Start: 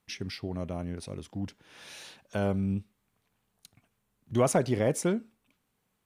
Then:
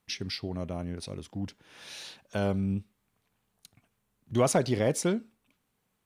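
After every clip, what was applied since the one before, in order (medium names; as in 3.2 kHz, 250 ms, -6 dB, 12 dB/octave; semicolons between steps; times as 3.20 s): dynamic bell 4.3 kHz, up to +7 dB, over -54 dBFS, Q 1.4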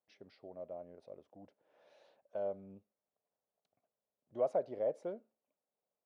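band-pass filter 590 Hz, Q 4.1; trim -3.5 dB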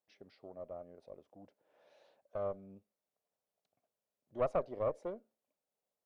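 valve stage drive 28 dB, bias 0.8; trim +4.5 dB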